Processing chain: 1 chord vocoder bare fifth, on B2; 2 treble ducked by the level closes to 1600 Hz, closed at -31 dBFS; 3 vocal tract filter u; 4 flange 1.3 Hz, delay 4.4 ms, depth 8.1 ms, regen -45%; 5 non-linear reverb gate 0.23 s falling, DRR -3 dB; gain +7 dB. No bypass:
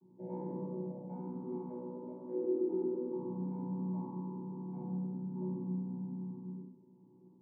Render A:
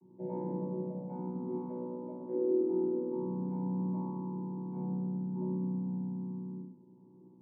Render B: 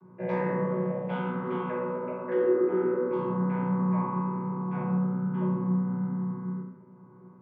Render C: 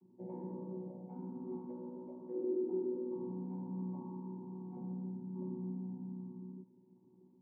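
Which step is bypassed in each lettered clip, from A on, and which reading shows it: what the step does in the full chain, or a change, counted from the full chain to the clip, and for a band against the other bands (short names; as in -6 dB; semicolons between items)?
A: 4, loudness change +3.5 LU; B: 3, 1 kHz band +6.5 dB; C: 5, 500 Hz band +2.0 dB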